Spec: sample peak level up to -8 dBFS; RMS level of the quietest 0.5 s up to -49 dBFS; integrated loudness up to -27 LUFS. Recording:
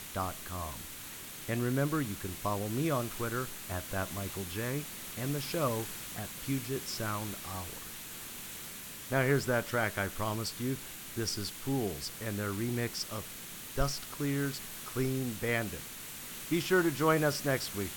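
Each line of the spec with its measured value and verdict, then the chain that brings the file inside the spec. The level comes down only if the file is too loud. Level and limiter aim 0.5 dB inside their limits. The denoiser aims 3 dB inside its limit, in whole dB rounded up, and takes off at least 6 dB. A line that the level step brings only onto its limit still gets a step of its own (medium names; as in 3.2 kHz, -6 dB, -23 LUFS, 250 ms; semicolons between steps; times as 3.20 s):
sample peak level -14.0 dBFS: pass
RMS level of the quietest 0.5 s -45 dBFS: fail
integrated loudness -34.5 LUFS: pass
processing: noise reduction 7 dB, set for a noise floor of -45 dBFS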